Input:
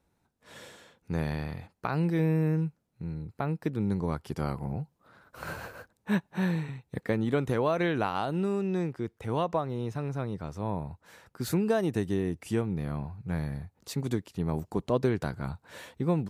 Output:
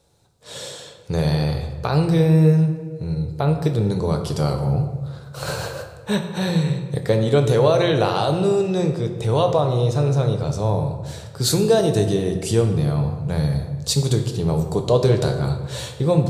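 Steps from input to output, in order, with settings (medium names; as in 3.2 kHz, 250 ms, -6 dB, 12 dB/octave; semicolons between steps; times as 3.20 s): in parallel at -2 dB: peak limiter -25 dBFS, peak gain reduction 11.5 dB; on the sum: graphic EQ 125/250/500/2000/4000/8000 Hz +8/-7/+9/-5/+11/+10 dB; reverberation RT60 1.4 s, pre-delay 7 ms, DRR 4 dB; trim +2 dB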